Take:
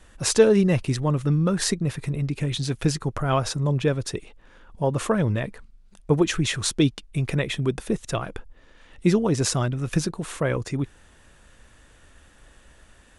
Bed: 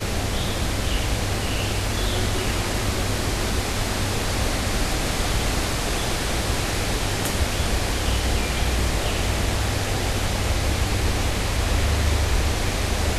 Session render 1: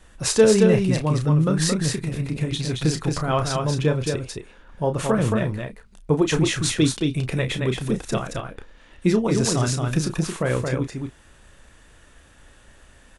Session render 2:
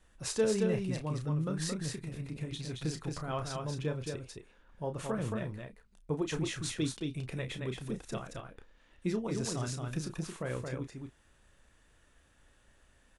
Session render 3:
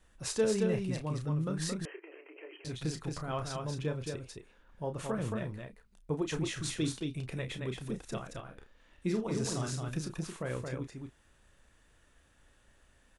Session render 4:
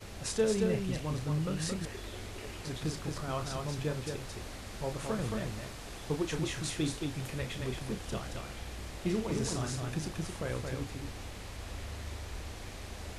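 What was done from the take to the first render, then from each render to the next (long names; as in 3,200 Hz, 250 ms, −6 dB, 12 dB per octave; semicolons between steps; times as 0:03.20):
double-tracking delay 32 ms −8.5 dB; single-tap delay 223 ms −4 dB
level −14 dB
0:01.85–0:02.65: linear-phase brick-wall band-pass 310–3,200 Hz; 0:06.52–0:07.05: double-tracking delay 46 ms −10 dB; 0:08.42–0:09.89: double-tracking delay 46 ms −7 dB
mix in bed −20.5 dB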